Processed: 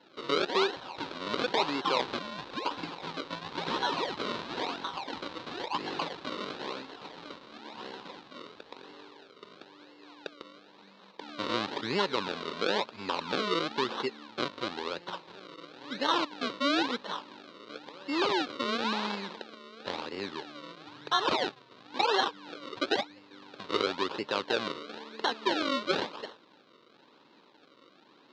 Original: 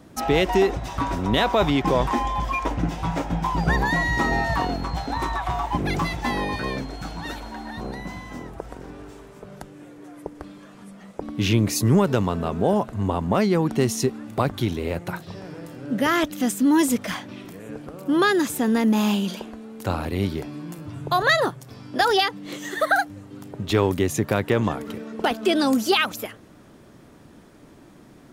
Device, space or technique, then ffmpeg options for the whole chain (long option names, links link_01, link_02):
circuit-bent sampling toy: -af "acrusher=samples=36:mix=1:aa=0.000001:lfo=1:lforange=36:lforate=0.98,highpass=430,equalizer=frequency=680:width_type=q:width=4:gain=-8,equalizer=frequency=970:width_type=q:width=4:gain=4,equalizer=frequency=2000:width_type=q:width=4:gain=-4,equalizer=frequency=3900:width_type=q:width=4:gain=8,lowpass=frequency=4700:width=0.5412,lowpass=frequency=4700:width=1.3066,volume=-5dB"